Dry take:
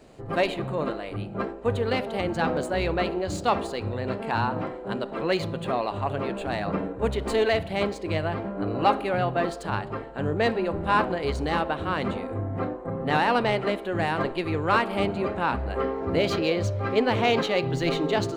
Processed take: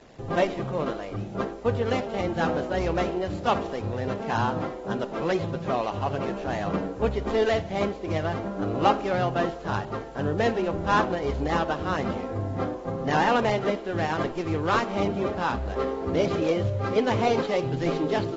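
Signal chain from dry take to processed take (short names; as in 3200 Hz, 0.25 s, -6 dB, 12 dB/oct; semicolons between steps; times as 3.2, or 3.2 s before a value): median filter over 15 samples; dynamic EQ 3100 Hz, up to +4 dB, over -55 dBFS, Q 4.7; bit-crush 9-bit; AAC 24 kbps 44100 Hz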